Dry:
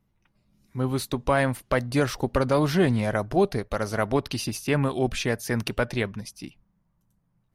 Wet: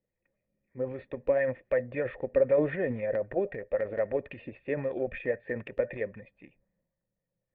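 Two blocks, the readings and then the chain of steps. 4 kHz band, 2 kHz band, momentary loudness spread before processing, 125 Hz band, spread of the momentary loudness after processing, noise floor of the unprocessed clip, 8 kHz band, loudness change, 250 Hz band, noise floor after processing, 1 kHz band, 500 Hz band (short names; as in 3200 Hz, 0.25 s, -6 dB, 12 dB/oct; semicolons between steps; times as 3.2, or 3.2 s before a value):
under -25 dB, -8.0 dB, 8 LU, -15.0 dB, 11 LU, -71 dBFS, under -40 dB, -5.5 dB, -11.0 dB, under -85 dBFS, -15.0 dB, -1.5 dB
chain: vocal tract filter e; transient shaper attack +4 dB, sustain +8 dB; LFO bell 3.8 Hz 260–2400 Hz +6 dB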